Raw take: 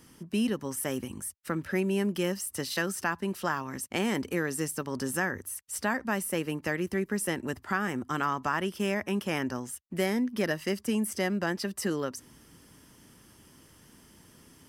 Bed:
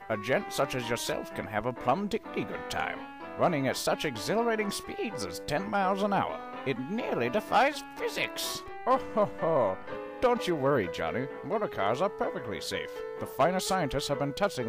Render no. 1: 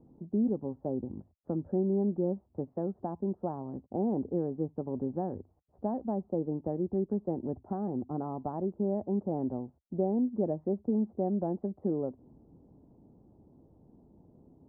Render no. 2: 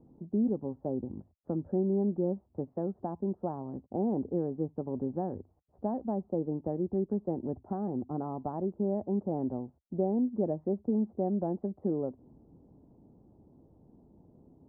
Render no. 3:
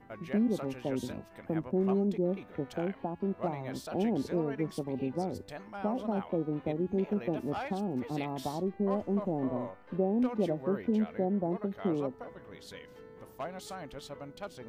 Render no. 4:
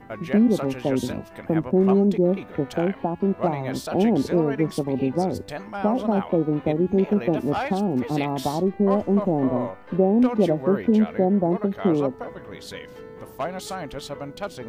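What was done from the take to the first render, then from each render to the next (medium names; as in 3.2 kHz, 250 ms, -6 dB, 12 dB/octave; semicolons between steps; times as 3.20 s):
elliptic low-pass 780 Hz, stop band 80 dB
no audible change
add bed -14 dB
trim +10.5 dB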